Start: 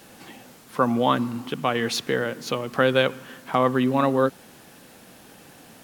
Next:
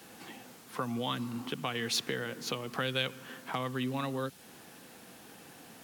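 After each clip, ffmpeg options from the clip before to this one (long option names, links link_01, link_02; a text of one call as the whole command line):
ffmpeg -i in.wav -filter_complex "[0:a]lowshelf=frequency=74:gain=-10.5,bandreject=frequency=580:width=12,acrossover=split=150|2300[link_01][link_02][link_03];[link_02]acompressor=threshold=-31dB:ratio=6[link_04];[link_01][link_04][link_03]amix=inputs=3:normalize=0,volume=-3.5dB" out.wav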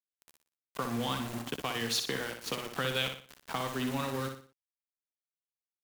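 ffmpeg -i in.wav -af "aeval=exprs='val(0)*gte(abs(val(0)),0.015)':channel_layout=same,aecho=1:1:60|120|180|240:0.473|0.175|0.0648|0.024" out.wav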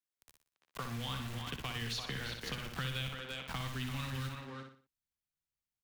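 ffmpeg -i in.wav -filter_complex "[0:a]asplit=2[link_01][link_02];[link_02]adelay=340,highpass=300,lowpass=3400,asoftclip=type=hard:threshold=-25.5dB,volume=-6dB[link_03];[link_01][link_03]amix=inputs=2:normalize=0,asubboost=boost=8:cutoff=160,acrossover=split=110|1500|5000[link_04][link_05][link_06][link_07];[link_04]acompressor=threshold=-43dB:ratio=4[link_08];[link_05]acompressor=threshold=-43dB:ratio=4[link_09];[link_06]acompressor=threshold=-38dB:ratio=4[link_10];[link_07]acompressor=threshold=-53dB:ratio=4[link_11];[link_08][link_09][link_10][link_11]amix=inputs=4:normalize=0,volume=-1dB" out.wav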